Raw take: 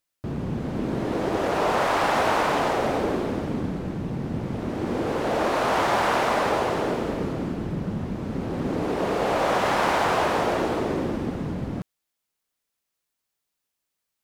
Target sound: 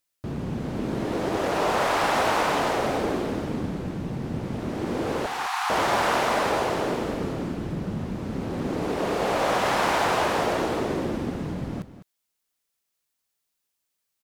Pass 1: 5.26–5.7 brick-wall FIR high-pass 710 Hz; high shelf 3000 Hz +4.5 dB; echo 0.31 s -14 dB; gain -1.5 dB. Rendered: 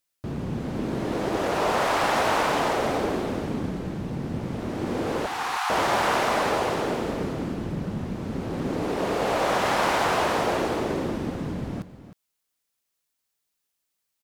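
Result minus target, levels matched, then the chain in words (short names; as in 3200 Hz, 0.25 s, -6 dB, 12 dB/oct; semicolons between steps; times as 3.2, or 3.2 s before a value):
echo 0.105 s late
5.26–5.7 brick-wall FIR high-pass 710 Hz; high shelf 3000 Hz +4.5 dB; echo 0.205 s -14 dB; gain -1.5 dB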